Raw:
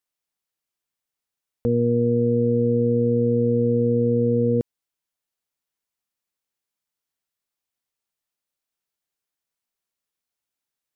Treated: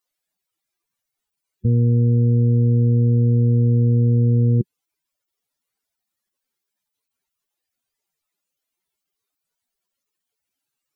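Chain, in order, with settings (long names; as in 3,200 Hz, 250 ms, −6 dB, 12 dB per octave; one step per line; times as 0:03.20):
expanding power law on the bin magnitudes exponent 3.1
formants moved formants −5 semitones
level +5 dB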